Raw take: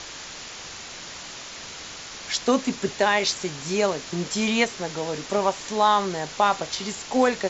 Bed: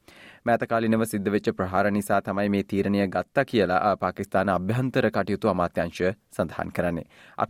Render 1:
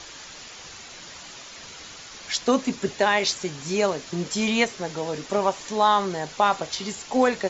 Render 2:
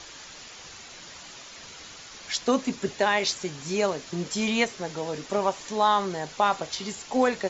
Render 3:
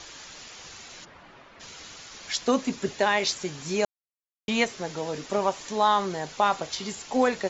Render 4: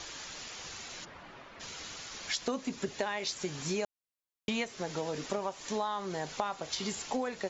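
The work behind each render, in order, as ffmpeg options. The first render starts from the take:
ffmpeg -i in.wav -af "afftdn=noise_reduction=6:noise_floor=-39" out.wav
ffmpeg -i in.wav -af "volume=-2.5dB" out.wav
ffmpeg -i in.wav -filter_complex "[0:a]asplit=3[link_01][link_02][link_03];[link_01]afade=type=out:start_time=1.04:duration=0.02[link_04];[link_02]lowpass=1700,afade=type=in:start_time=1.04:duration=0.02,afade=type=out:start_time=1.59:duration=0.02[link_05];[link_03]afade=type=in:start_time=1.59:duration=0.02[link_06];[link_04][link_05][link_06]amix=inputs=3:normalize=0,asplit=3[link_07][link_08][link_09];[link_07]atrim=end=3.85,asetpts=PTS-STARTPTS,afade=type=out:start_time=3.846:duration=0.004:curve=hsin[link_10];[link_08]atrim=start=3.85:end=4.48,asetpts=PTS-STARTPTS,volume=0[link_11];[link_09]atrim=start=4.48,asetpts=PTS-STARTPTS,afade=type=in:duration=0.004:curve=hsin[link_12];[link_10][link_11][link_12]concat=n=3:v=0:a=1" out.wav
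ffmpeg -i in.wav -af "acompressor=threshold=-30dB:ratio=10" out.wav

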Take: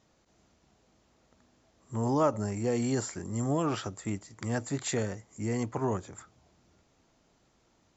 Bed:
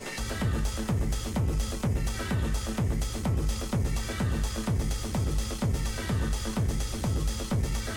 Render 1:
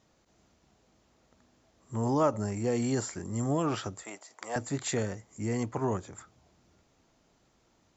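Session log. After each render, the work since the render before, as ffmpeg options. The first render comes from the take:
ffmpeg -i in.wav -filter_complex "[0:a]asettb=1/sr,asplit=3[link_01][link_02][link_03];[link_01]atrim=end=4.034[link_04];[link_02]atrim=start=4.03:end=4.56,asetpts=PTS-STARTPTS,afade=type=in:duration=0.004:curve=qsin,afade=type=out:start_time=0.526:duration=0.004:curve=qsin,highpass=frequency=670:width_type=q:width=2[link_05];[link_03]atrim=start=4.556[link_06];[link_04][link_05]acrossfade=duration=0.004:curve1=hsin:curve2=qsin[link_07];[link_07][link_06]acrossfade=duration=0.004:curve1=qsin:curve2=hsin" out.wav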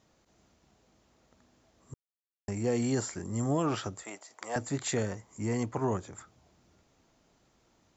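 ffmpeg -i in.wav -filter_complex "[0:a]asettb=1/sr,asplit=3[link_01][link_02][link_03];[link_01]atrim=end=5.114[link_04];[link_02]atrim=start=5.11:end=5.54,asetpts=PTS-STARTPTS,afade=type=in:duration=0.004:curve=qsin,afade=type=out:start_time=0.426:duration=0.004:curve=qsin,equalizer=frequency=1000:width_type=o:width=0.37:gain=8[link_05];[link_03]atrim=start=5.536[link_06];[link_04][link_05]acrossfade=duration=0.004:curve1=hsin:curve2=qsin[link_07];[link_07][link_06]acrossfade=duration=0.004:curve1=qsin:curve2=hsin,asplit=3[link_08][link_09][link_10];[link_08]atrim=end=1.94,asetpts=PTS-STARTPTS,afade=type=out:start_time=1.936:duration=0.004:curve=hsin[link_11];[link_09]atrim=start=1.94:end=2.48,asetpts=PTS-STARTPTS,volume=0[link_12];[link_10]atrim=start=2.48,asetpts=PTS-STARTPTS,afade=type=in:duration=0.004:curve=hsin[link_13];[link_11][link_12][link_13]concat=n=3:v=0:a=1" out.wav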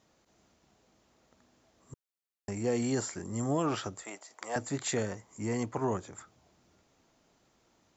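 ffmpeg -i in.wav -af "lowshelf=frequency=130:gain=-6" out.wav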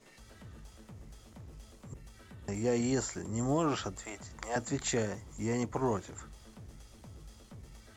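ffmpeg -i in.wav -i bed.wav -filter_complex "[1:a]volume=-22.5dB[link_01];[0:a][link_01]amix=inputs=2:normalize=0" out.wav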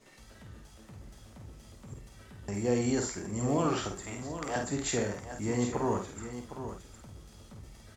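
ffmpeg -i in.wav -filter_complex "[0:a]asplit=2[link_01][link_02];[link_02]adelay=49,volume=-5dB[link_03];[link_01][link_03]amix=inputs=2:normalize=0,asplit=2[link_04][link_05];[link_05]aecho=0:1:74|760:0.237|0.299[link_06];[link_04][link_06]amix=inputs=2:normalize=0" out.wav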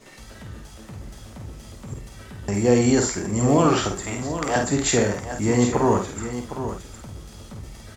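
ffmpeg -i in.wav -af "volume=11dB" out.wav

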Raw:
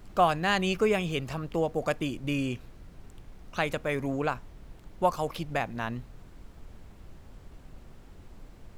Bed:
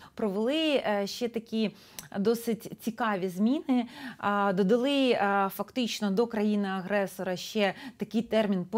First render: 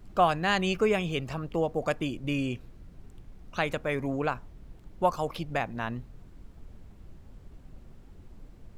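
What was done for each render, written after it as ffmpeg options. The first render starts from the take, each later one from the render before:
ffmpeg -i in.wav -af "afftdn=noise_reduction=6:noise_floor=-51" out.wav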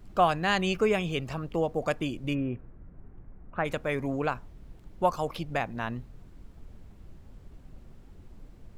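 ffmpeg -i in.wav -filter_complex "[0:a]asplit=3[link_01][link_02][link_03];[link_01]afade=type=out:start_time=2.33:duration=0.02[link_04];[link_02]lowpass=frequency=1800:width=0.5412,lowpass=frequency=1800:width=1.3066,afade=type=in:start_time=2.33:duration=0.02,afade=type=out:start_time=3.64:duration=0.02[link_05];[link_03]afade=type=in:start_time=3.64:duration=0.02[link_06];[link_04][link_05][link_06]amix=inputs=3:normalize=0" out.wav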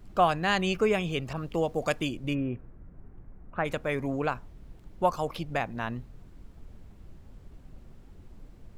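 ffmpeg -i in.wav -filter_complex "[0:a]asettb=1/sr,asplit=3[link_01][link_02][link_03];[link_01]atrim=end=1.334[link_04];[link_02]atrim=start=1.33:end=2.09,asetpts=PTS-STARTPTS,afade=type=in:duration=0.004:curve=qsin,afade=type=out:start_time=0.756:duration=0.004:curve=qsin,adynamicequalizer=threshold=0.00501:dfrequency=2200:dqfactor=0.7:tfrequency=2200:tqfactor=0.7:attack=5:release=100:ratio=0.375:range=3:mode=boostabove:tftype=highshelf[link_05];[link_03]atrim=start=2.086[link_06];[link_04][link_05]acrossfade=duration=0.004:curve1=hsin:curve2=qsin[link_07];[link_07][link_06]acrossfade=duration=0.004:curve1=qsin:curve2=hsin" out.wav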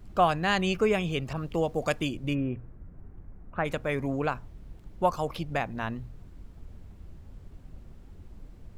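ffmpeg -i in.wav -af "equalizer=frequency=65:width_type=o:width=1.8:gain=5.5,bandreject=frequency=60:width_type=h:width=6,bandreject=frequency=120:width_type=h:width=6" out.wav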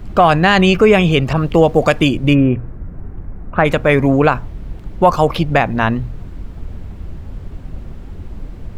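ffmpeg -i in.wav -filter_complex "[0:a]acrossover=split=4100[link_01][link_02];[link_01]acontrast=64[link_03];[link_03][link_02]amix=inputs=2:normalize=0,alimiter=level_in=11dB:limit=-1dB:release=50:level=0:latency=1" out.wav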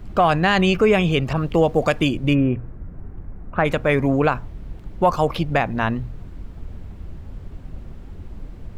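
ffmpeg -i in.wav -af "volume=-6dB" out.wav

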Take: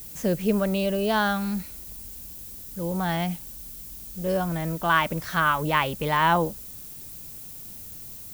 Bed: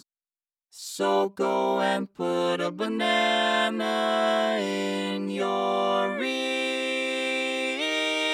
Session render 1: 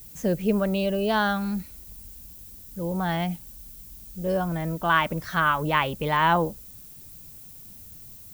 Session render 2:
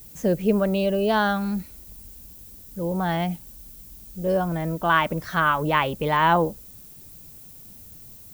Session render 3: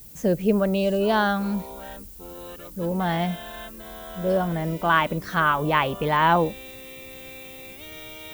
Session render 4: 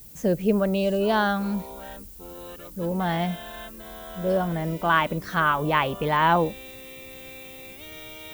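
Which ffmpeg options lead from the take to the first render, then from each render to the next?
ffmpeg -i in.wav -af "afftdn=noise_reduction=6:noise_floor=-41" out.wav
ffmpeg -i in.wav -af "equalizer=frequency=450:width_type=o:width=2.4:gain=3.5" out.wav
ffmpeg -i in.wav -i bed.wav -filter_complex "[1:a]volume=-15.5dB[link_01];[0:a][link_01]amix=inputs=2:normalize=0" out.wav
ffmpeg -i in.wav -af "volume=-1dB" out.wav

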